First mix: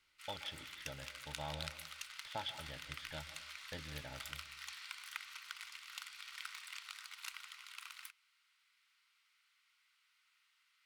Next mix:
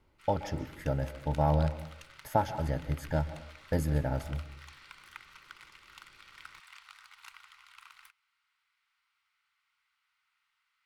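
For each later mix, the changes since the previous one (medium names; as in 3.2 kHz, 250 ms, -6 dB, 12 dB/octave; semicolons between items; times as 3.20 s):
speech: remove four-pole ladder low-pass 3.6 kHz, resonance 80%; master: add tilt shelf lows +9 dB, about 1.4 kHz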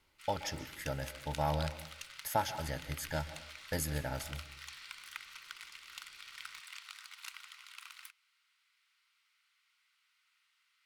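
master: add tilt shelf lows -9 dB, about 1.4 kHz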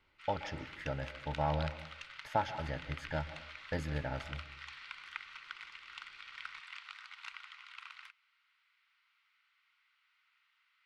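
background +3.5 dB; master: add low-pass 2.8 kHz 12 dB/octave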